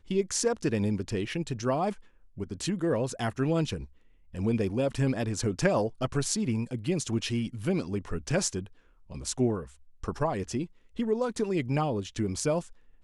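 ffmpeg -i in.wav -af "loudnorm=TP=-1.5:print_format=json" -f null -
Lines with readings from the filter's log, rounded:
"input_i" : "-30.2",
"input_tp" : "-11.1",
"input_lra" : "2.5",
"input_thresh" : "-40.6",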